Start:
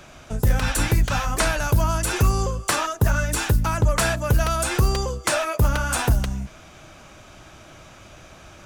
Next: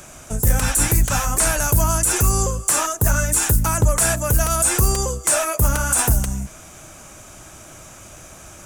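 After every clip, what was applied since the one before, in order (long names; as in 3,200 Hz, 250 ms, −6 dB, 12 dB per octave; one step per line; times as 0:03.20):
high shelf with overshoot 5,800 Hz +12 dB, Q 1.5
brickwall limiter −9 dBFS, peak gain reduction 10.5 dB
level +2.5 dB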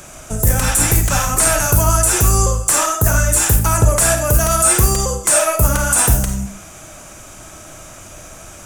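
convolution reverb RT60 0.40 s, pre-delay 10 ms, DRR 5 dB
level +3 dB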